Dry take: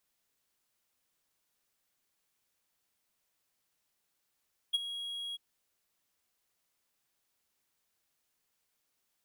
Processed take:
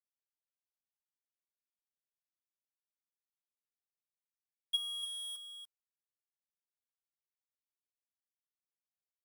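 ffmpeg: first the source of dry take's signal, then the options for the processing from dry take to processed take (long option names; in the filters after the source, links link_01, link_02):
-f lavfi -i "aevalsrc='0.0841*(1-4*abs(mod(3300*t+0.25,1)-0.5))':duration=0.642:sample_rate=44100,afade=type=in:duration=0.018,afade=type=out:start_time=0.018:duration=0.023:silence=0.211,afade=type=out:start_time=0.62:duration=0.022"
-af "adynamicequalizer=threshold=0.00251:dfrequency=1500:dqfactor=0.97:tfrequency=1500:tqfactor=0.97:attack=5:release=100:ratio=0.375:range=3:mode=cutabove:tftype=bell,aeval=exprs='val(0)*gte(abs(val(0)),0.00531)':channel_layout=same,aecho=1:1:289:0.398"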